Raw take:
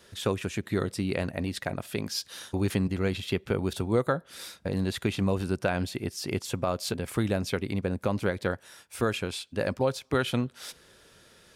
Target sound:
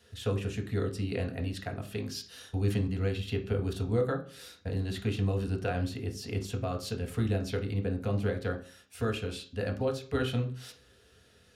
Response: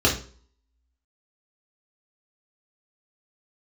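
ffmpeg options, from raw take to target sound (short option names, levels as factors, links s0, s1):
-filter_complex "[0:a]asplit=2[s0][s1];[1:a]atrim=start_sample=2205,highshelf=f=7300:g=-9.5[s2];[s1][s2]afir=irnorm=-1:irlink=0,volume=0.15[s3];[s0][s3]amix=inputs=2:normalize=0,volume=0.355"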